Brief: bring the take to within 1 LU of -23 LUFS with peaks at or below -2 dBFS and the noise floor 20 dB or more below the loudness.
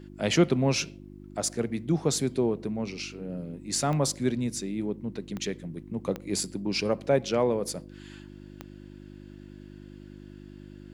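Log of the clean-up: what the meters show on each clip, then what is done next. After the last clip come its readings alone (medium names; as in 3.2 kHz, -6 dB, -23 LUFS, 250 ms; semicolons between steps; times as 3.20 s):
clicks found 4; hum 50 Hz; highest harmonic 350 Hz; hum level -43 dBFS; loudness -29.0 LUFS; peak level -9.5 dBFS; loudness target -23.0 LUFS
-> de-click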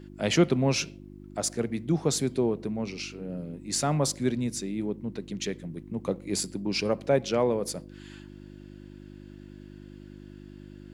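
clicks found 0; hum 50 Hz; highest harmonic 350 Hz; hum level -43 dBFS
-> de-hum 50 Hz, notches 7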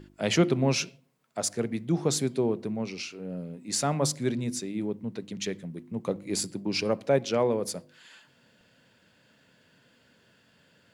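hum not found; loudness -29.5 LUFS; peak level -10.5 dBFS; loudness target -23.0 LUFS
-> trim +6.5 dB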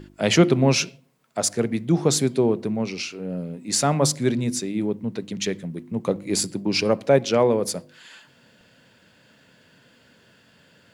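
loudness -23.0 LUFS; peak level -4.0 dBFS; noise floor -57 dBFS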